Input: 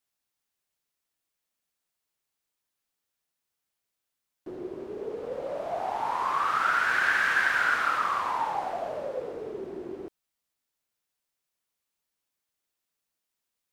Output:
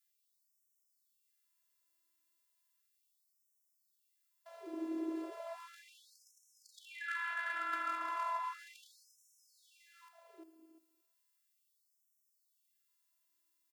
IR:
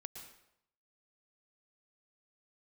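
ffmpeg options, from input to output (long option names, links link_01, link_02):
-filter_complex "[0:a]acrossover=split=3900[link_01][link_02];[link_02]acompressor=threshold=-58dB:ratio=4:attack=1:release=60[link_03];[link_01][link_03]amix=inputs=2:normalize=0,highshelf=frequency=9300:gain=9.5,bandreject=frequency=360:width=12,areverse,acompressor=threshold=-32dB:ratio=20,areverse,afftfilt=real='hypot(re,im)*cos(PI*b)':imag='0':win_size=512:overlap=0.75,aeval=exprs='0.0473*(cos(1*acos(clip(val(0)/0.0473,-1,1)))-cos(1*PI/2))+0.00531*(cos(3*acos(clip(val(0)/0.0473,-1,1)))-cos(3*PI/2))+0.00211*(cos(5*acos(clip(val(0)/0.0473,-1,1)))-cos(5*PI/2))+0.000335*(cos(6*acos(clip(val(0)/0.0473,-1,1)))-cos(6*PI/2))':channel_layout=same,afreqshift=-22,aecho=1:1:350|700|1050:0.422|0.0675|0.0108,afftfilt=real='re*gte(b*sr/1024,240*pow(5400/240,0.5+0.5*sin(2*PI*0.35*pts/sr)))':imag='im*gte(b*sr/1024,240*pow(5400/240,0.5+0.5*sin(2*PI*0.35*pts/sr)))':win_size=1024:overlap=0.75,volume=2.5dB"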